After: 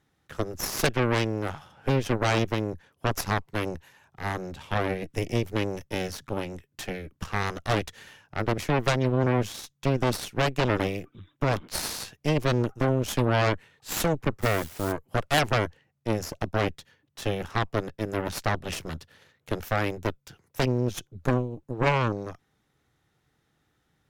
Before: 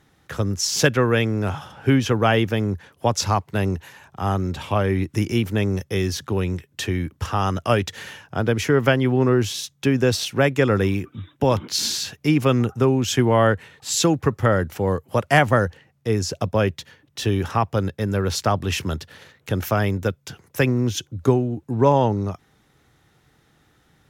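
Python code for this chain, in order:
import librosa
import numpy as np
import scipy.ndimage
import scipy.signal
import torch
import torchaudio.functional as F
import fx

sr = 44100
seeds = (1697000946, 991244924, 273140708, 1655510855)

y = fx.quant_dither(x, sr, seeds[0], bits=6, dither='triangular', at=(14.41, 14.91), fade=0.02)
y = fx.cheby_harmonics(y, sr, harmonics=(3, 5, 6), levels_db=(-10, -20, -11), full_scale_db=-3.5)
y = F.gain(torch.from_numpy(y), -6.5).numpy()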